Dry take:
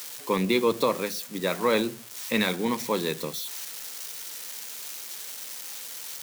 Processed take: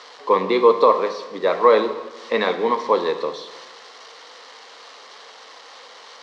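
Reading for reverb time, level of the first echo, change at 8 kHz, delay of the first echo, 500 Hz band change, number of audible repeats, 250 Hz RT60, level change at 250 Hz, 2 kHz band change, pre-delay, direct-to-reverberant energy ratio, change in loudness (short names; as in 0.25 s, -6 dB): 1.2 s, none, under -10 dB, none, +9.5 dB, none, 1.3 s, -0.5 dB, +2.5 dB, 18 ms, 9.0 dB, +9.5 dB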